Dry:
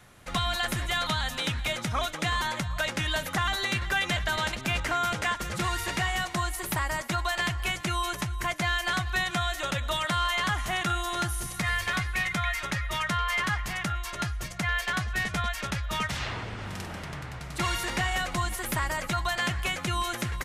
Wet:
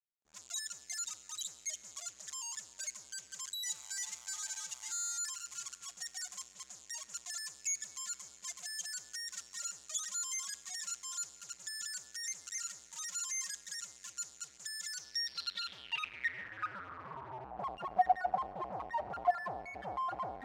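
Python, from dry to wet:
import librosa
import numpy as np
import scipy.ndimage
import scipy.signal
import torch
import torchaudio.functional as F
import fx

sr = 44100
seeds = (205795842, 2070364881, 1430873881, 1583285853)

p1 = x + fx.echo_alternate(x, sr, ms=210, hz=2000.0, feedback_pct=82, wet_db=-6.0, dry=0)
p2 = fx.spec_topn(p1, sr, count=1)
p3 = fx.dmg_tone(p2, sr, hz=880.0, level_db=-43.0, at=(3.65, 5.17), fade=0.02)
p4 = fx.fuzz(p3, sr, gain_db=64.0, gate_db=-60.0)
p5 = p3 + (p4 * librosa.db_to_amplitude(-9.0))
p6 = fx.rev_schroeder(p5, sr, rt60_s=2.9, comb_ms=30, drr_db=17.0)
p7 = fx.filter_sweep_bandpass(p6, sr, from_hz=6900.0, to_hz=750.0, start_s=14.86, end_s=17.54, q=7.3)
y = p7 * librosa.db_to_amplitude(1.0)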